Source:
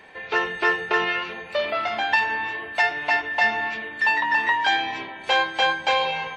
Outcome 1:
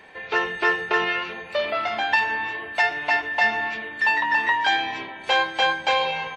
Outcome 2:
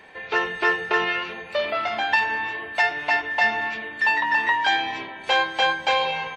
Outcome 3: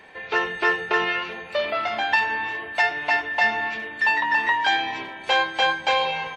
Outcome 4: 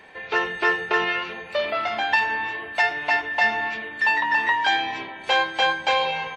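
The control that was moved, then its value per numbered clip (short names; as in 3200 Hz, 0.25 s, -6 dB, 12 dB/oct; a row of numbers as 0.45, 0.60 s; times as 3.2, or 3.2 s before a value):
speakerphone echo, time: 120, 200, 380, 80 ms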